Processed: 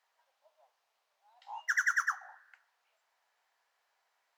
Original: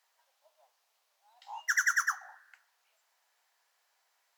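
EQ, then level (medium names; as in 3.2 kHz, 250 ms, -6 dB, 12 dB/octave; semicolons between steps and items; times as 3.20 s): treble shelf 4.5 kHz -12 dB; 0.0 dB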